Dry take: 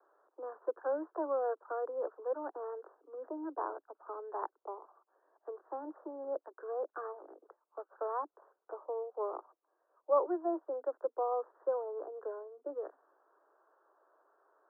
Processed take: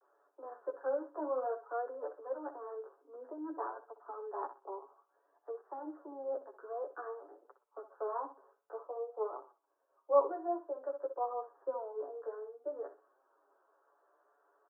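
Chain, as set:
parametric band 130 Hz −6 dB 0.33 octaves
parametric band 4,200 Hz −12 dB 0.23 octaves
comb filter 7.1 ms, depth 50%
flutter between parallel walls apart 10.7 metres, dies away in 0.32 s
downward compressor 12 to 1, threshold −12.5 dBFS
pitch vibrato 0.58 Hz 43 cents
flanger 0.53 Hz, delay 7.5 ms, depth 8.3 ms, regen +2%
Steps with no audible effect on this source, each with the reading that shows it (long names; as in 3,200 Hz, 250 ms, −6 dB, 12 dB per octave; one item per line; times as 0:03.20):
parametric band 130 Hz: nothing at its input below 250 Hz
parametric band 4,200 Hz: nothing at its input above 1,600 Hz
downward compressor, threshold −12.5 dBFS: peak of its input −15.5 dBFS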